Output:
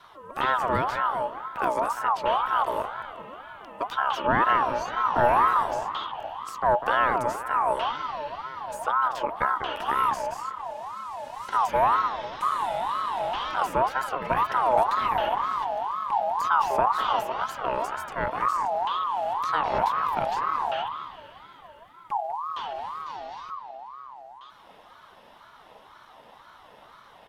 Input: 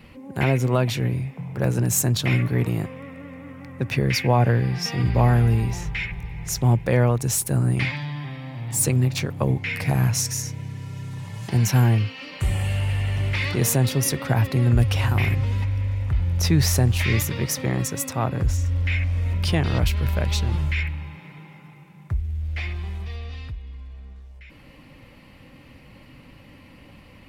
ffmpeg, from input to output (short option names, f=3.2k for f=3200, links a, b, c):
-filter_complex "[0:a]acrossover=split=100|1700|2000[a][b][c][d];[b]aecho=1:1:198|396|594|792|990:0.447|0.201|0.0905|0.0407|0.0183[e];[c]volume=31.5dB,asoftclip=hard,volume=-31.5dB[f];[d]acompressor=threshold=-42dB:ratio=10[g];[a][e][f][g]amix=inputs=4:normalize=0,aeval=exprs='val(0)*sin(2*PI*960*n/s+960*0.25/2*sin(2*PI*2*n/s))':c=same,volume=-1.5dB"